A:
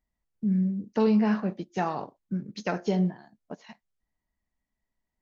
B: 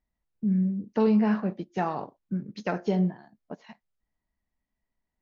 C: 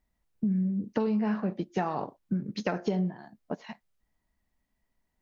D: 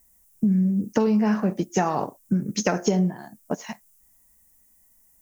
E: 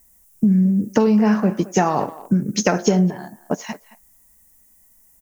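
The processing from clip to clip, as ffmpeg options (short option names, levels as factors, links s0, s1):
-af "aemphasis=mode=reproduction:type=50fm"
-af "acompressor=threshold=0.0282:ratio=6,volume=1.88"
-af "aexciter=amount=9.5:drive=6.8:freq=6000,volume=2.24"
-filter_complex "[0:a]asplit=2[s0][s1];[s1]adelay=220,highpass=300,lowpass=3400,asoftclip=type=hard:threshold=0.158,volume=0.141[s2];[s0][s2]amix=inputs=2:normalize=0,volume=1.78"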